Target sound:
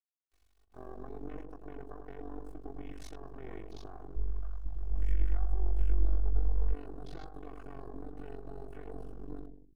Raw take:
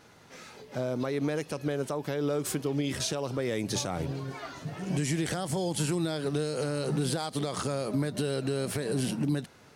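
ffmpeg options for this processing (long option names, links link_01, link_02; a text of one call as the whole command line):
ffmpeg -i in.wav -filter_complex "[0:a]flanger=delay=0.1:depth=4.6:regen=-81:speed=0.67:shape=sinusoidal,acrusher=bits=5:dc=4:mix=0:aa=0.000001,aecho=1:1:2.7:0.75,asplit=2[link_01][link_02];[link_02]adelay=100,lowpass=frequency=910:poles=1,volume=-3dB,asplit=2[link_03][link_04];[link_04]adelay=100,lowpass=frequency=910:poles=1,volume=0.46,asplit=2[link_05][link_06];[link_06]adelay=100,lowpass=frequency=910:poles=1,volume=0.46,asplit=2[link_07][link_08];[link_08]adelay=100,lowpass=frequency=910:poles=1,volume=0.46,asplit=2[link_09][link_10];[link_10]adelay=100,lowpass=frequency=910:poles=1,volume=0.46,asplit=2[link_11][link_12];[link_12]adelay=100,lowpass=frequency=910:poles=1,volume=0.46[link_13];[link_01][link_03][link_05][link_07][link_09][link_11][link_13]amix=inputs=7:normalize=0,asplit=3[link_14][link_15][link_16];[link_14]afade=type=out:start_time=4.15:duration=0.02[link_17];[link_15]asubboost=boost=10.5:cutoff=67,afade=type=in:start_time=4.15:duration=0.02,afade=type=out:start_time=6.73:duration=0.02[link_18];[link_16]afade=type=in:start_time=6.73:duration=0.02[link_19];[link_17][link_18][link_19]amix=inputs=3:normalize=0,tremolo=f=47:d=0.857,afwtdn=0.00398,adynamicequalizer=threshold=0.00141:dfrequency=2400:dqfactor=0.7:tfrequency=2400:tqfactor=0.7:attack=5:release=100:ratio=0.375:range=2.5:mode=cutabove:tftype=highshelf,volume=-7.5dB" out.wav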